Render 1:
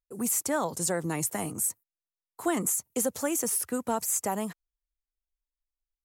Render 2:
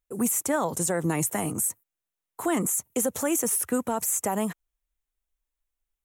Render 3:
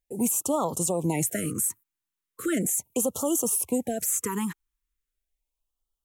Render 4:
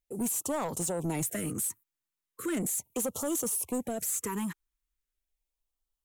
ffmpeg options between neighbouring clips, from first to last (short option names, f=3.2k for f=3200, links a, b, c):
-af "equalizer=f=4.7k:t=o:w=0.43:g=-9.5,alimiter=limit=-22.5dB:level=0:latency=1:release=75,acontrast=60"
-af "afftfilt=real='re*(1-between(b*sr/1024,560*pow(2000/560,0.5+0.5*sin(2*PI*0.38*pts/sr))/1.41,560*pow(2000/560,0.5+0.5*sin(2*PI*0.38*pts/sr))*1.41))':imag='im*(1-between(b*sr/1024,560*pow(2000/560,0.5+0.5*sin(2*PI*0.38*pts/sr))/1.41,560*pow(2000/560,0.5+0.5*sin(2*PI*0.38*pts/sr))*1.41))':win_size=1024:overlap=0.75"
-af "asoftclip=type=tanh:threshold=-23.5dB,volume=-2.5dB"